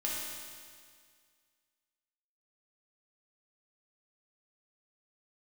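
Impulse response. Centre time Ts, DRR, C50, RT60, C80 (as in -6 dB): 115 ms, -5.5 dB, -1.5 dB, 2.0 s, 0.5 dB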